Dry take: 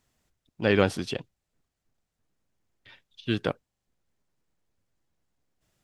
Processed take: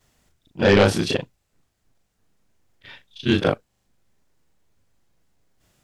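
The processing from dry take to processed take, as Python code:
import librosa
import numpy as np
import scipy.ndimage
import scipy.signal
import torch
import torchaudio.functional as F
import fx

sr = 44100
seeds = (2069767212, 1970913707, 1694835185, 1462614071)

y = fx.frame_reverse(x, sr, frame_ms=80.0)
y = fx.fold_sine(y, sr, drive_db=8, ceiling_db=-8.5)
y = y * librosa.db_to_amplitude(1.0)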